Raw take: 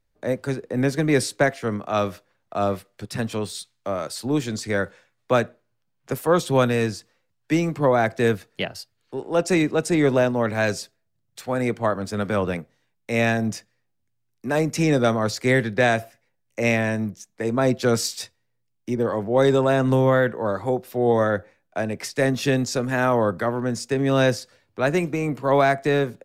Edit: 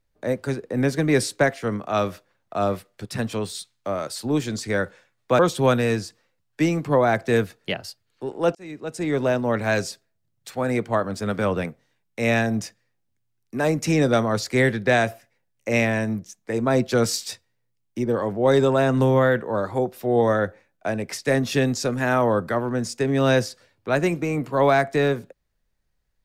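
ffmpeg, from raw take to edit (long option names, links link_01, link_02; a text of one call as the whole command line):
ffmpeg -i in.wav -filter_complex "[0:a]asplit=3[link_01][link_02][link_03];[link_01]atrim=end=5.392[link_04];[link_02]atrim=start=6.298:end=9.46,asetpts=PTS-STARTPTS,afade=type=out:start_time=3.158:duration=0.004:curve=hsin[link_05];[link_03]atrim=start=9.46,asetpts=PTS-STARTPTS,afade=type=in:duration=0.99[link_06];[link_05][link_06]concat=n=2:v=0:a=1[link_07];[link_04][link_07]acrossfade=duration=0.004:curve1=hsin:curve2=hsin" out.wav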